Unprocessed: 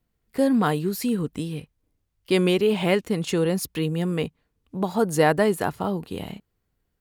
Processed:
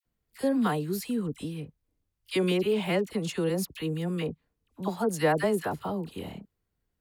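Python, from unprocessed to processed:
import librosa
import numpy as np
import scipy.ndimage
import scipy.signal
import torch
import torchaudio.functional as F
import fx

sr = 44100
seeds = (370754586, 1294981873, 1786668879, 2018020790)

y = fx.dispersion(x, sr, late='lows', ms=55.0, hz=1100.0)
y = y * librosa.db_to_amplitude(-5.5)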